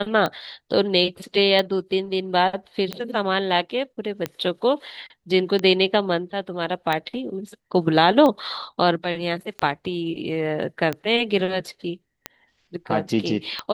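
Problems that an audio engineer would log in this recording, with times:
tick 45 rpm -11 dBFS

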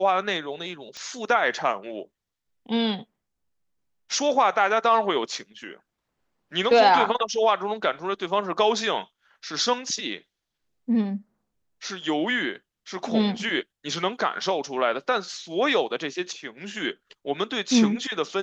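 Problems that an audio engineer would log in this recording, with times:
0.97 pop -23 dBFS

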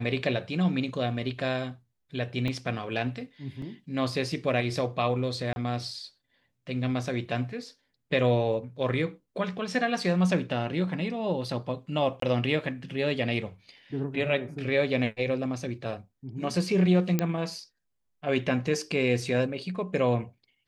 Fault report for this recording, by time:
2.48 gap 2 ms
3.62 gap 3.2 ms
5.53–5.56 gap 31 ms
12.2–12.22 gap 23 ms
17.19 pop -11 dBFS

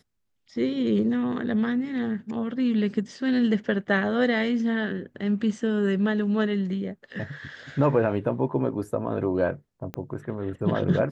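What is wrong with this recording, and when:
9.94 pop -19 dBFS

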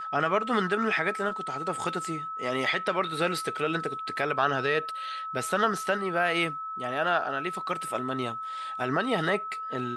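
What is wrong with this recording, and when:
tone 1300 Hz -33 dBFS

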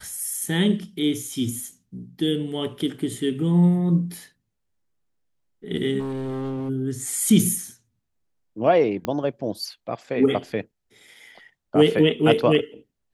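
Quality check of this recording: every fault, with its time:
5.99–6.7 clipped -26.5 dBFS
9.05 pop -12 dBFS

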